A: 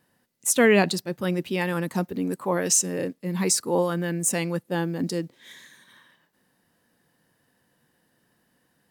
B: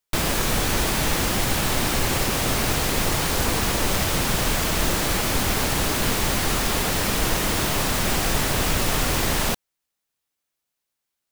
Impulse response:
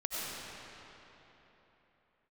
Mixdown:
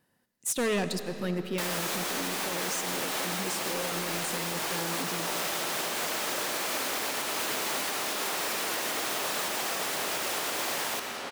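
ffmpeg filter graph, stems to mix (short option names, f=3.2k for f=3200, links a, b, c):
-filter_complex "[0:a]asoftclip=type=hard:threshold=-20.5dB,volume=-6dB,asplit=2[a][b];[b]volume=-12.5dB[c];[1:a]highpass=410,asoftclip=type=hard:threshold=-19dB,adelay=1450,volume=-5dB,asplit=2[d][e];[e]volume=-5dB[f];[2:a]atrim=start_sample=2205[g];[c][f]amix=inputs=2:normalize=0[h];[h][g]afir=irnorm=-1:irlink=0[i];[a][d][i]amix=inputs=3:normalize=0,alimiter=limit=-22dB:level=0:latency=1:release=472"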